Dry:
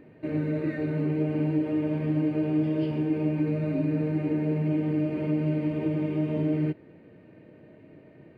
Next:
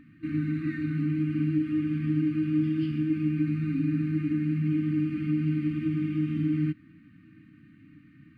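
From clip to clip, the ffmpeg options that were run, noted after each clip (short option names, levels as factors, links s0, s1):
-af "afftfilt=real='re*(1-between(b*sr/4096,330,1100))':imag='im*(1-between(b*sr/4096,330,1100))':win_size=4096:overlap=0.75"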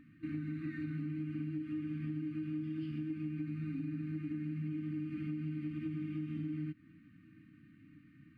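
-af "acompressor=threshold=0.0316:ratio=6,volume=0.501"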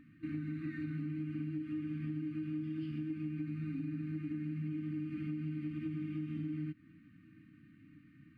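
-af anull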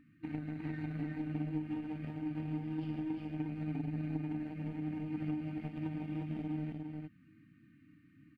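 -filter_complex "[0:a]aeval=exprs='0.0376*(cos(1*acos(clip(val(0)/0.0376,-1,1)))-cos(1*PI/2))+0.0075*(cos(3*acos(clip(val(0)/0.0376,-1,1)))-cos(3*PI/2))':c=same,asplit=2[s0][s1];[s1]aecho=0:1:355:0.668[s2];[s0][s2]amix=inputs=2:normalize=0,volume=1.5"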